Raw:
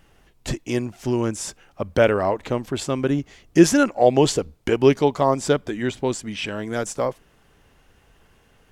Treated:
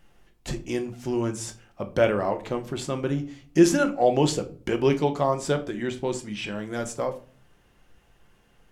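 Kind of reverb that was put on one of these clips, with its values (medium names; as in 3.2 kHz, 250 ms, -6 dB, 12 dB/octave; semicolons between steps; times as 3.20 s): simulated room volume 290 m³, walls furnished, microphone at 0.86 m; trim -5.5 dB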